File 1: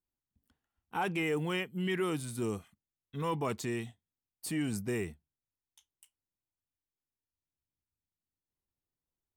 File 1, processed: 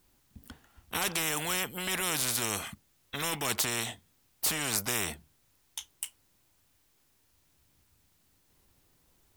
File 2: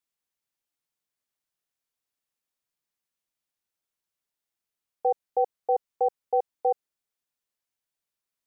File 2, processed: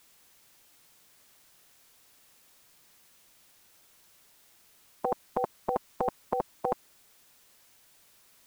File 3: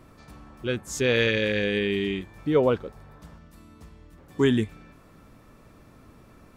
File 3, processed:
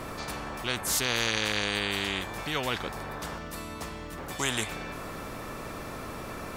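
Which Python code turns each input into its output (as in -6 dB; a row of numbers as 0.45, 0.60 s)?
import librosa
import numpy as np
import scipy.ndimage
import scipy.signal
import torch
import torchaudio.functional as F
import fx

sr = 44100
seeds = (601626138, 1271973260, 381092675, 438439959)

y = fx.spectral_comp(x, sr, ratio=4.0)
y = librosa.util.normalize(y) * 10.0 ** (-12 / 20.0)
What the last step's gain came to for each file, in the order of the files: +10.5, +3.5, -2.0 dB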